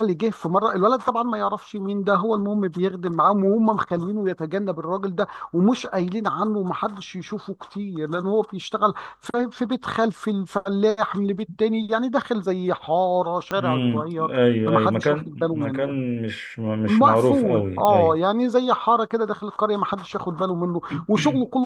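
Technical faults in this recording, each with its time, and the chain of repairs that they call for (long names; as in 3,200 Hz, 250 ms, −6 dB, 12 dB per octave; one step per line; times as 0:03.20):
0:13.51: click −13 dBFS
0:17.85: click −8 dBFS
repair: click removal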